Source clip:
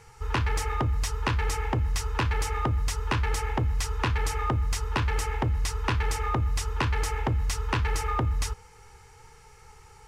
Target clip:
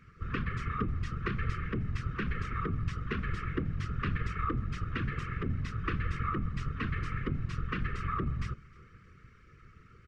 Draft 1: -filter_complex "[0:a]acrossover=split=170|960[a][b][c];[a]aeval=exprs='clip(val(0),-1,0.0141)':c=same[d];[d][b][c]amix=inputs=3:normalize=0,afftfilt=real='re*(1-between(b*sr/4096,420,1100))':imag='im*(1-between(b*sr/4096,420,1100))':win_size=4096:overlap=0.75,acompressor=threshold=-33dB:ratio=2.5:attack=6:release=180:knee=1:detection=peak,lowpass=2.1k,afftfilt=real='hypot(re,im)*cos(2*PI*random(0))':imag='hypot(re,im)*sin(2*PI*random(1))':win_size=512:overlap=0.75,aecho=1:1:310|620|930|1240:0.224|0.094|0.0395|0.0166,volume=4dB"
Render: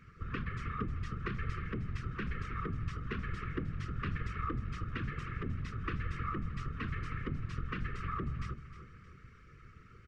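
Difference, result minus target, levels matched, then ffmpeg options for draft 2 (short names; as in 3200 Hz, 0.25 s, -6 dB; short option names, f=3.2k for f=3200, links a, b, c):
compressor: peak gain reduction +4.5 dB; echo-to-direct +6.5 dB
-filter_complex "[0:a]acrossover=split=170|960[a][b][c];[a]aeval=exprs='clip(val(0),-1,0.0141)':c=same[d];[d][b][c]amix=inputs=3:normalize=0,afftfilt=real='re*(1-between(b*sr/4096,420,1100))':imag='im*(1-between(b*sr/4096,420,1100))':win_size=4096:overlap=0.75,acompressor=threshold=-25.5dB:ratio=2.5:attack=6:release=180:knee=1:detection=peak,lowpass=2.1k,afftfilt=real='hypot(re,im)*cos(2*PI*random(0))':imag='hypot(re,im)*sin(2*PI*random(1))':win_size=512:overlap=0.75,aecho=1:1:310|620|930:0.0596|0.025|0.0105,volume=4dB"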